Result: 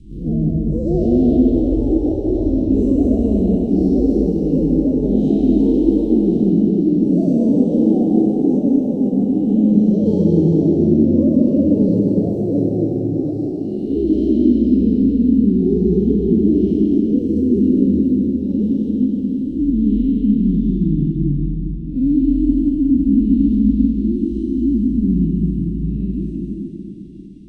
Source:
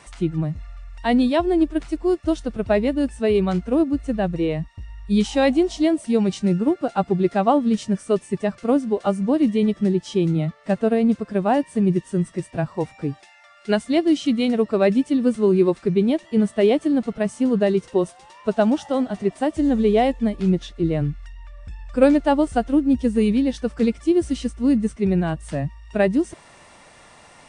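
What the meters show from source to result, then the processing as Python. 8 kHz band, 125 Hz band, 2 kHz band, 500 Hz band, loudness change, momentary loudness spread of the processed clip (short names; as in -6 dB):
n/a, +6.5 dB, under -30 dB, -0.5 dB, +5.0 dB, 7 LU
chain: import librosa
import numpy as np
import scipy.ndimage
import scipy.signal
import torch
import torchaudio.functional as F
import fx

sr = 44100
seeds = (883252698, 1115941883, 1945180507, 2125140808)

p1 = fx.spec_blur(x, sr, span_ms=224.0)
p2 = scipy.signal.sosfilt(scipy.signal.cheby1(3, 1.0, [310.0, 3200.0], 'bandstop', fs=sr, output='sos'), p1)
p3 = fx.riaa(p2, sr, side='playback')
p4 = fx.echo_feedback(p3, sr, ms=402, feedback_pct=50, wet_db=-12)
p5 = fx.echo_pitch(p4, sr, ms=100, semitones=6, count=2, db_per_echo=-3.0)
p6 = fx.peak_eq(p5, sr, hz=270.0, db=8.5, octaves=1.2)
p7 = fx.level_steps(p6, sr, step_db=12)
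p8 = p6 + (p7 * librosa.db_to_amplitude(-2.0))
p9 = fx.rev_plate(p8, sr, seeds[0], rt60_s=3.0, hf_ratio=0.85, predelay_ms=115, drr_db=-1.0)
y = p9 * librosa.db_to_amplitude(-12.0)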